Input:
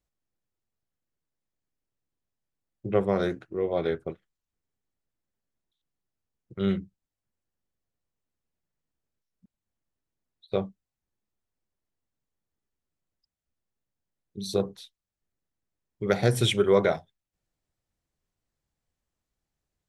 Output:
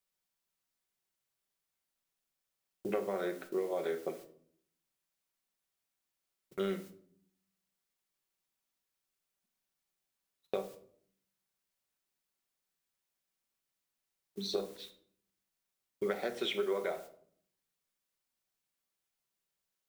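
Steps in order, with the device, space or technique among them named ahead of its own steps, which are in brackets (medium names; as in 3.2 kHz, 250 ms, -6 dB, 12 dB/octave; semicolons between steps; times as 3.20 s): 16.15–16.84 s: high-pass 170 Hz 24 dB/octave; baby monitor (band-pass 380–3500 Hz; compression 10:1, threshold -35 dBFS, peak gain reduction 18 dB; white noise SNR 15 dB; gate -54 dBFS, range -28 dB); simulated room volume 910 m³, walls furnished, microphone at 1.1 m; trim +3 dB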